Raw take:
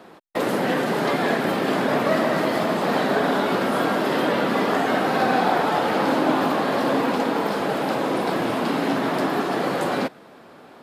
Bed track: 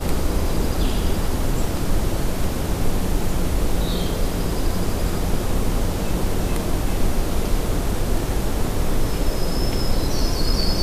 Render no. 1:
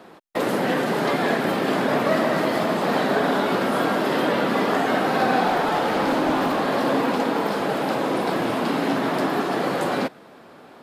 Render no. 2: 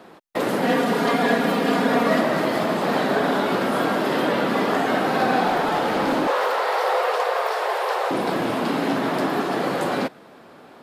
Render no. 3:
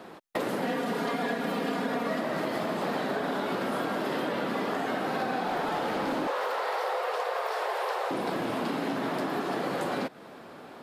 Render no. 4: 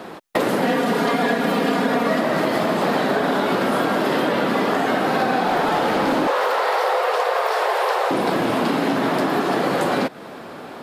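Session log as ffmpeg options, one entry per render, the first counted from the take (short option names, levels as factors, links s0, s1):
-filter_complex "[0:a]asettb=1/sr,asplit=3[s0][s1][s2];[s0]atrim=end=5.474[s3];[s1]atrim=start=5.47:end=6.68,asetpts=PTS-STARTPTS,afade=t=in:d=0.004:c=qsin,afade=t=out:st=1.206:d=0.004:c=qsin,volume=6.31,asoftclip=hard,volume=0.158[s4];[s2]atrim=start=6.676[s5];[s3][s4]acrossfade=d=0.004:c1=hsin:c2=qsin[s6];[s6][s5]acrossfade=d=0.004:c1=qsin:c2=hsin"
-filter_complex "[0:a]asettb=1/sr,asplit=3[s0][s1][s2];[s0]atrim=end=0.624[s3];[s1]atrim=start=0.62:end=2.21,asetpts=PTS-STARTPTS,afade=t=in:d=0.004:c=qsin,afade=t=out:st=1.586:d=0.004:c=qsin,aecho=1:1:4.2:0.69,atrim=end_sample=70119[s4];[s2]atrim=start=2.206[s5];[s3][s4]acrossfade=d=0.004:c1=hsin:c2=qsin[s6];[s6][s5]acrossfade=d=0.004:c1=qsin:c2=hsin,asettb=1/sr,asplit=3[s7][s8][s9];[s7]atrim=end=6.274[s10];[s8]atrim=start=6.27:end=8.11,asetpts=PTS-STARTPTS,afade=t=in:d=0.004:c=qsin,afade=t=out:st=1.836:d=0.004:c=qsin,afreqshift=240[s11];[s9]atrim=start=8.106[s12];[s10][s11]acrossfade=d=0.004:c1=hsin:c2=qsin[s13];[s13][s12]acrossfade=d=0.004:c1=qsin:c2=hsin"
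-af "acompressor=threshold=0.0398:ratio=5"
-af "volume=3.35"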